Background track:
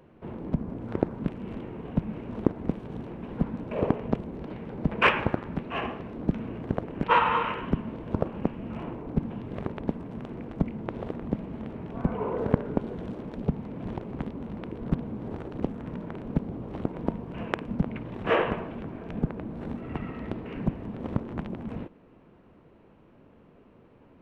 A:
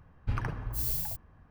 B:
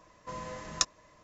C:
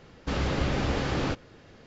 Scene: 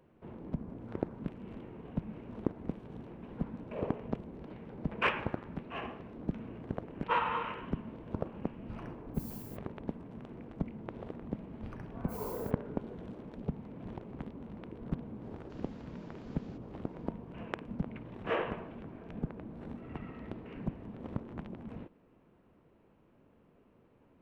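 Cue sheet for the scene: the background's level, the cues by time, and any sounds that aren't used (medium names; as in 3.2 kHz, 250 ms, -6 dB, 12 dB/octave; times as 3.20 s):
background track -9 dB
8.41 s: add A -17.5 dB
11.35 s: add A -16 dB
15.23 s: add C -17.5 dB + compression 4:1, threshold -38 dBFS
not used: B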